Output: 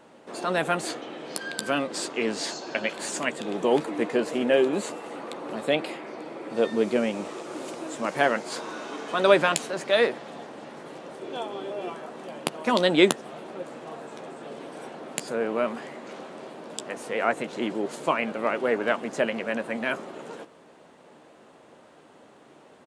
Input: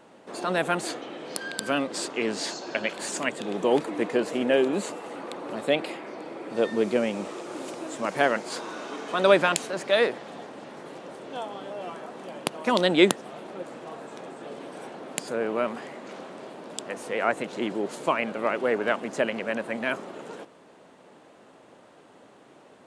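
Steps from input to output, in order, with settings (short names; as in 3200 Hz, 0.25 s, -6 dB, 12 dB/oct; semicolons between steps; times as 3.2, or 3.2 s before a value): doubler 13 ms -12 dB; 11.21–11.93 small resonant body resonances 370/2400/3400 Hz, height 10 dB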